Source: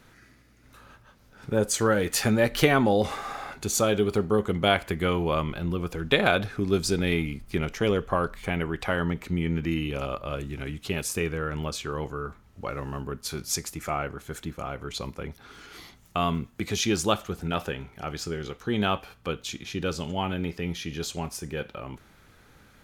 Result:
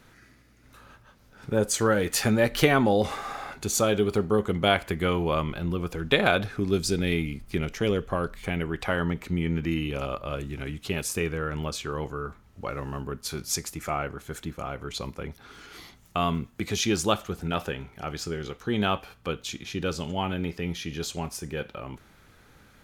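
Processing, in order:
0:06.68–0:08.71: dynamic equaliser 1,000 Hz, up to −5 dB, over −40 dBFS, Q 0.94

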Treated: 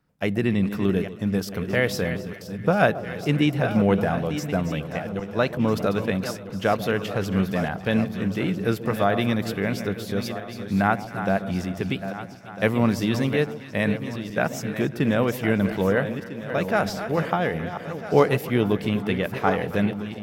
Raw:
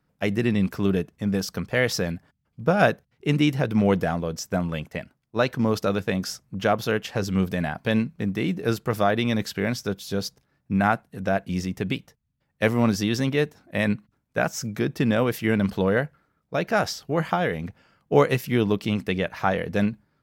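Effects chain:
feedback delay that plays each chunk backwards 650 ms, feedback 56%, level −10 dB
delay that swaps between a low-pass and a high-pass 135 ms, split 940 Hz, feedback 72%, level −14 dB
dynamic equaliser 5,800 Hz, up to −6 dB, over −49 dBFS, Q 1.5

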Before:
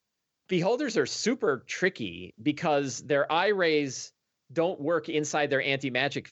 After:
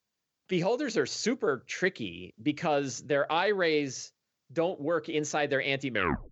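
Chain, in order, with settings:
turntable brake at the end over 0.41 s
level −2 dB

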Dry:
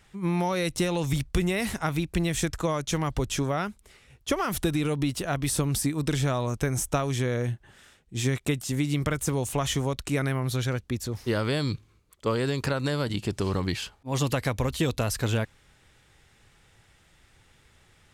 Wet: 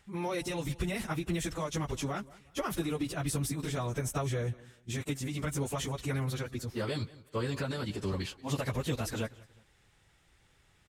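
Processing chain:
repeating echo 303 ms, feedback 32%, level −20.5 dB
time stretch by phase vocoder 0.6×
level −3.5 dB

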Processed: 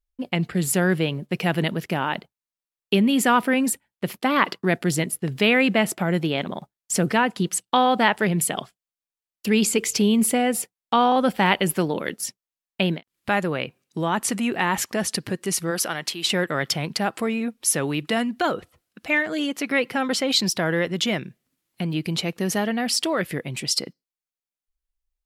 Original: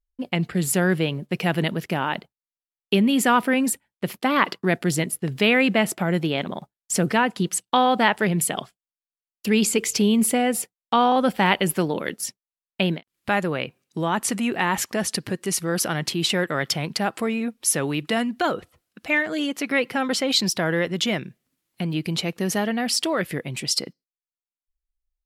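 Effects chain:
0:15.70–0:16.24: high-pass filter 320 Hz → 1,000 Hz 6 dB per octave

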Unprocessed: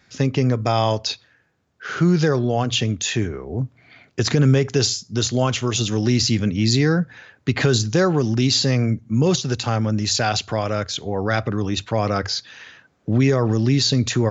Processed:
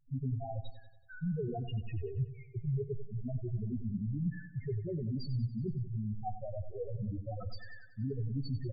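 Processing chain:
gain on one half-wave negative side −7 dB
high-shelf EQ 5,700 Hz −7 dB
reversed playback
downward compressor 12 to 1, threshold −34 dBFS, peak gain reduction 20 dB
reversed playback
phase-vocoder stretch with locked phases 0.61×
spectral peaks only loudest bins 2
repeating echo 94 ms, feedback 54%, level −13 dB
on a send at −22 dB: convolution reverb, pre-delay 4 ms
on the sum: level +7 dB

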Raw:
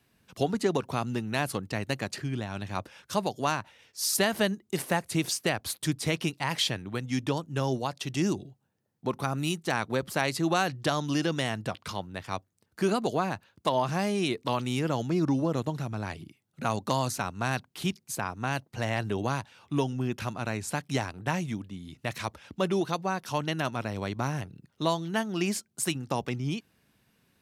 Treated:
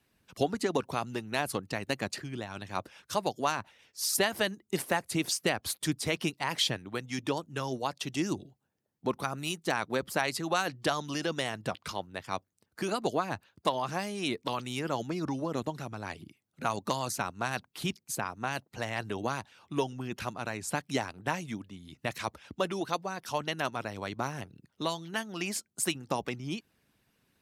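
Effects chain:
harmonic and percussive parts rebalanced harmonic −9 dB

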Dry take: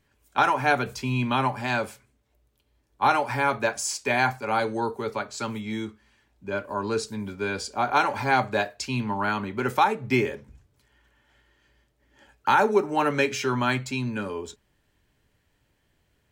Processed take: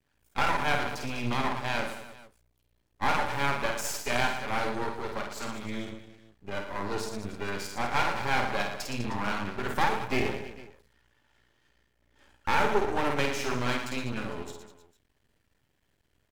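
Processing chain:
reverse bouncing-ball delay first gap 50 ms, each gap 1.3×, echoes 5
half-wave rectification
level −2.5 dB

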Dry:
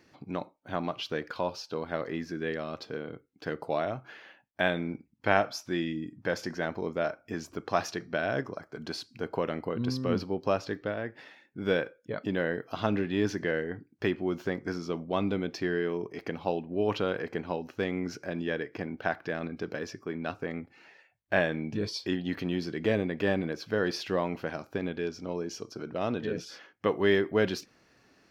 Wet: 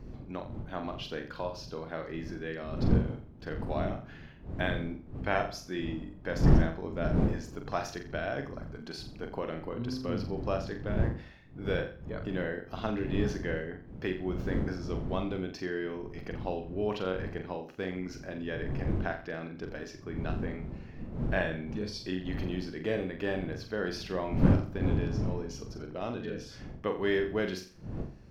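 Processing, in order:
wind on the microphone 180 Hz −30 dBFS
flutter between parallel walls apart 7.4 metres, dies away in 0.39 s
level −5.5 dB

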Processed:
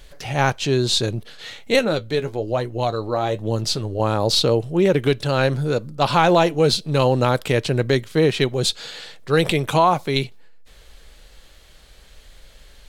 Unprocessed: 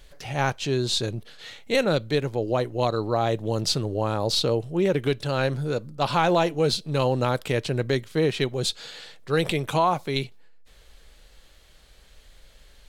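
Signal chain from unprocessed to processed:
0:01.79–0:04.00: flanger 1.1 Hz, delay 8.1 ms, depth 4.2 ms, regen +48%
level +5.5 dB

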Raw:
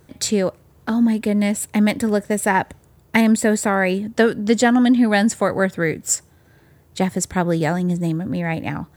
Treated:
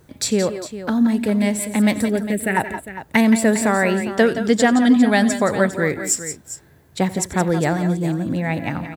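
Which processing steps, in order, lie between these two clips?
0:02.06–0:02.57: phaser with its sweep stopped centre 2,400 Hz, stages 4
on a send: multi-tap delay 90/171/174/404 ms −18.5/−12.5/−13/−13 dB

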